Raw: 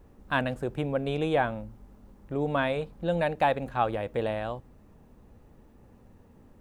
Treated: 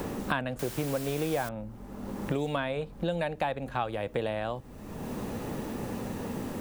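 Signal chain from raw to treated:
in parallel at +1 dB: downward compressor, threshold −38 dBFS, peak gain reduction 17 dB
0:00.59–0:01.49: on the sum: bit-depth reduction 6 bits, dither triangular
multiband upward and downward compressor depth 100%
level −5 dB

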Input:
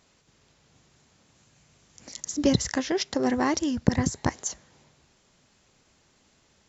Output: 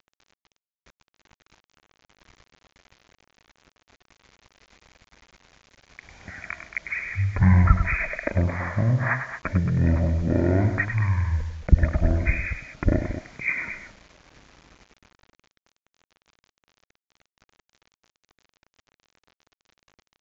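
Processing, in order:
ambience of single reflections 33 ms −8.5 dB, 74 ms −11 dB
bit reduction 9 bits
change of speed 0.331×
level +3 dB

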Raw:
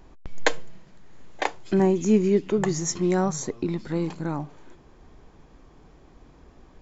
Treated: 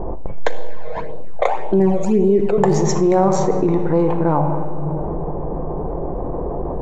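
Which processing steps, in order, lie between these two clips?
adaptive Wiener filter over 9 samples
low-pass that shuts in the quiet parts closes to 610 Hz, open at −20 dBFS
flat-topped bell 660 Hz +10 dB
rectangular room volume 2,400 cubic metres, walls mixed, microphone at 0.83 metres
0:00.47–0:02.58: all-pass phaser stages 12, 1.8 Hz, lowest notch 280–2,000 Hz
high-shelf EQ 5,500 Hz −5.5 dB
tuned comb filter 50 Hz, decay 0.84 s, harmonics all, mix 50%
envelope flattener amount 70%

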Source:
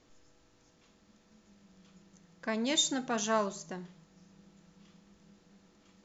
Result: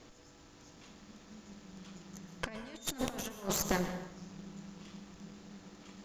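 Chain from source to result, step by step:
compressor whose output falls as the input rises −40 dBFS, ratio −0.5
harmonic generator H 6 −9 dB, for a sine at −20 dBFS
dense smooth reverb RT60 0.88 s, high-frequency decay 0.65×, pre-delay 105 ms, DRR 9 dB
level +1.5 dB

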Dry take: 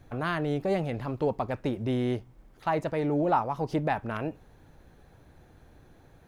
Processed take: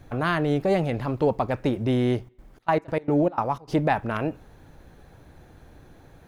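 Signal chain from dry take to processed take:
0:02.15–0:03.73: gate pattern ".xx.xx.x.x" 151 BPM −24 dB
on a send: convolution reverb RT60 1.2 s, pre-delay 3 ms, DRR 23.5 dB
on the sum: level +5.5 dB

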